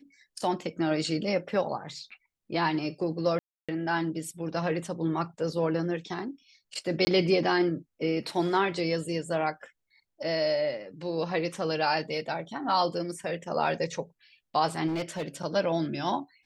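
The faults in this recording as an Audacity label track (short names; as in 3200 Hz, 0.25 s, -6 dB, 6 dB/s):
3.390000	3.690000	gap 0.296 s
7.050000	7.070000	gap 20 ms
14.870000	15.280000	clipped -27 dBFS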